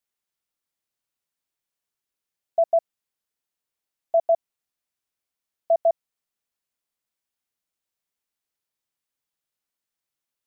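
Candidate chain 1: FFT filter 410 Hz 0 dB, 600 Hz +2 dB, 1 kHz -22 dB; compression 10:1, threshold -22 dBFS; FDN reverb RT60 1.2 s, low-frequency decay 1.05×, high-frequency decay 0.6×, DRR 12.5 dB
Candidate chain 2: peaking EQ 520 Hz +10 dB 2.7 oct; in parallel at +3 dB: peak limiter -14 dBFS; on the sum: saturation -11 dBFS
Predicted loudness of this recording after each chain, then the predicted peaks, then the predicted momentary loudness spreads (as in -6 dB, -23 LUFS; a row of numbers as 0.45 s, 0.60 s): -30.0 LUFS, -19.5 LUFS; -16.5 dBFS, -11.0 dBFS; 17 LU, 5 LU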